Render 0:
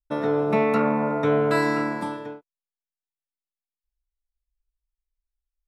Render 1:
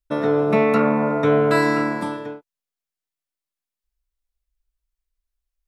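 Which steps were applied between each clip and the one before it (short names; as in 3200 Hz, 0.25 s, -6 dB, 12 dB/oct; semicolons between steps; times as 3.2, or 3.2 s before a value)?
notch 850 Hz, Q 12; gain +4 dB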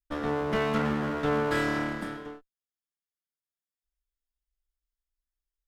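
minimum comb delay 0.58 ms; gain -8 dB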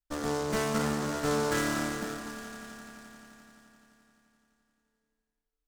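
swelling echo 86 ms, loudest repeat 5, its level -18 dB; noise-modulated delay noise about 5200 Hz, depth 0.052 ms; gain -2 dB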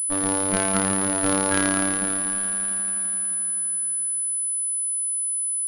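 robotiser 96.4 Hz; pulse-width modulation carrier 10000 Hz; gain +8.5 dB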